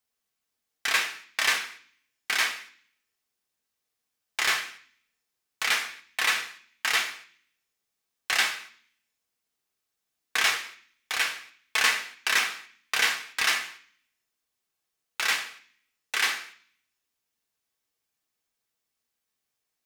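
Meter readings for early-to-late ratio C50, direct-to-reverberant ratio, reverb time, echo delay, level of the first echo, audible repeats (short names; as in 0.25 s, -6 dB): 14.0 dB, 2.5 dB, 0.50 s, none, none, none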